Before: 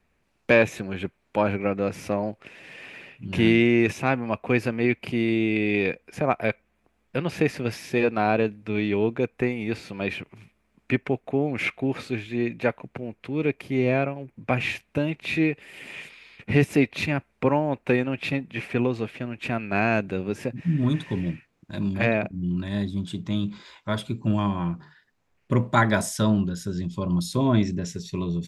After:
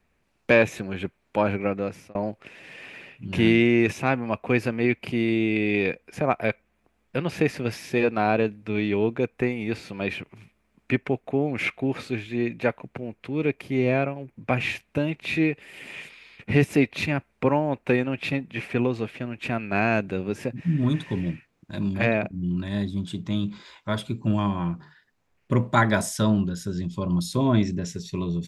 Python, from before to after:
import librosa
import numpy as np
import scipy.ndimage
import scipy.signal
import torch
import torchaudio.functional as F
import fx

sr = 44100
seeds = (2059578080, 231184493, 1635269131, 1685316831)

y = fx.edit(x, sr, fx.fade_out_span(start_s=1.55, length_s=0.6, curve='qsin'), tone=tone)